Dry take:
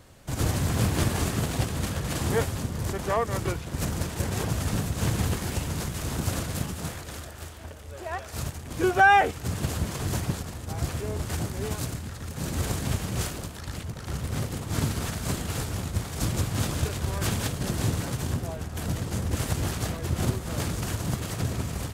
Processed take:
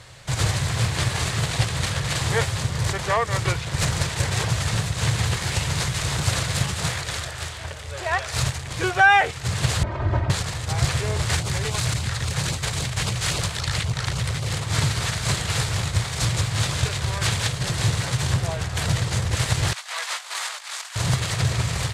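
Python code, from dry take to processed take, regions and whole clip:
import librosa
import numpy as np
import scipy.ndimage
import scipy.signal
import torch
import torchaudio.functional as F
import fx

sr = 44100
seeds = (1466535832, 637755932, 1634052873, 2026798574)

y = fx.chain(x, sr, fx.lowpass(hz=1000.0, slope=12),
    fx.comb(ms=3.2, depth=0.86), at=(9.83, 10.3))
y = fx.chain(y, sr, fx.filter_lfo_notch(shape='sine', hz=3.7, low_hz=230.0, high_hz=1900.0, q=2.5),
    fx.over_compress(threshold_db=-33.0, ratio=-1.0), at=(11.39, 14.57))
y = fx.chain(y, sr, fx.highpass(hz=810.0, slope=24),
    fx.over_compress(threshold_db=-43.0, ratio=-0.5), at=(19.73, 20.96))
y = fx.graphic_eq(y, sr, hz=(125, 250, 500, 1000, 2000, 4000, 8000), db=(11, -10, 4, 5, 9, 10, 7))
y = fx.rider(y, sr, range_db=4, speed_s=0.5)
y = scipy.signal.sosfilt(scipy.signal.butter(2, 11000.0, 'lowpass', fs=sr, output='sos'), y)
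y = y * 10.0 ** (-1.5 / 20.0)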